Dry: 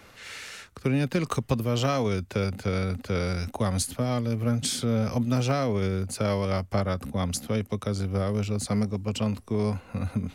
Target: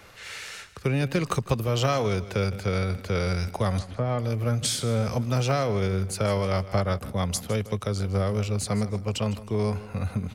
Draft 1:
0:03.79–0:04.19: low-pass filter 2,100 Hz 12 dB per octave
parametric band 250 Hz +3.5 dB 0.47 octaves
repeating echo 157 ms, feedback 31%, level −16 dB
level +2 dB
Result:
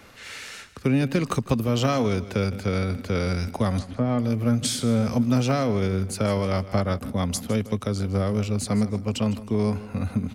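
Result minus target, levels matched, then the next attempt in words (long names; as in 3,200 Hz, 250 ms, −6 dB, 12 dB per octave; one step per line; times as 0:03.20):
250 Hz band +4.5 dB
0:03.79–0:04.19: low-pass filter 2,100 Hz 12 dB per octave
parametric band 250 Hz −8.5 dB 0.47 octaves
repeating echo 157 ms, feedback 31%, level −16 dB
level +2 dB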